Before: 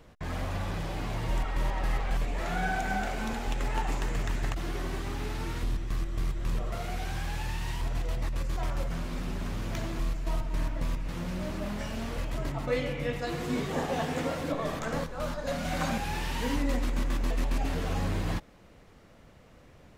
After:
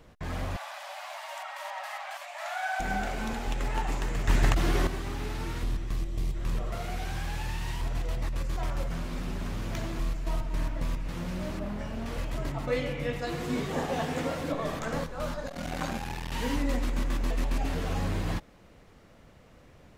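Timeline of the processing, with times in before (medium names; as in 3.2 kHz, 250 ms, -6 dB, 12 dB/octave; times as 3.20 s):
0.56–2.80 s: brick-wall FIR high-pass 560 Hz
4.28–4.87 s: gain +8 dB
5.91–6.33 s: peaking EQ 1.4 kHz -5 dB -> -12.5 dB 0.98 oct
11.59–12.06 s: treble shelf 2.2 kHz -9.5 dB
15.47–16.32 s: transformer saturation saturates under 390 Hz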